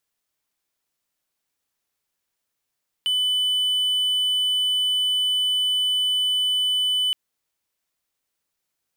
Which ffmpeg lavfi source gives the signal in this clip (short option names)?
-f lavfi -i "aevalsrc='0.141*(1-4*abs(mod(3000*t+0.25,1)-0.5))':d=4.07:s=44100"